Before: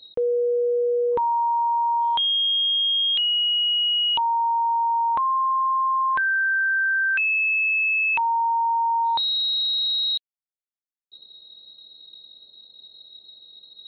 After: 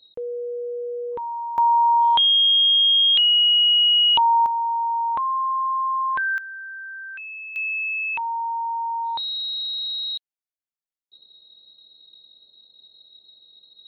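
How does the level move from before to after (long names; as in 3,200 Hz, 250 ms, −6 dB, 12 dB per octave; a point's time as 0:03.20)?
−7.5 dB
from 0:01.58 +5 dB
from 0:04.46 −1.5 dB
from 0:06.38 −14 dB
from 0:07.56 −4.5 dB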